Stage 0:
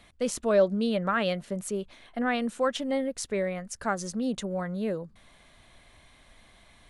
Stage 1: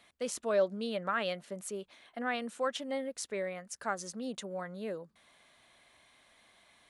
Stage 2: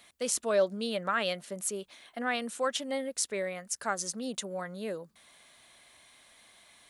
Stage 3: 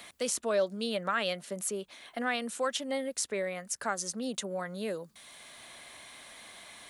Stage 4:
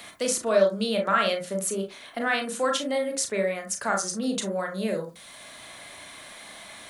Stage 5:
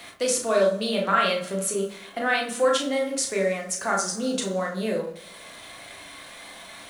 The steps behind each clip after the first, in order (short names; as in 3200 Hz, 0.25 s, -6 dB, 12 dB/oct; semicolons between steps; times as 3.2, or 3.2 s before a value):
HPF 420 Hz 6 dB/oct; gain -4.5 dB
high shelf 4400 Hz +10 dB; gain +2 dB
three-band squash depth 40%
reverb RT60 0.25 s, pre-delay 27 ms, DRR 2 dB; gain +4.5 dB
two-slope reverb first 0.33 s, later 1.6 s, from -18 dB, DRR 2.5 dB; backlash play -47.5 dBFS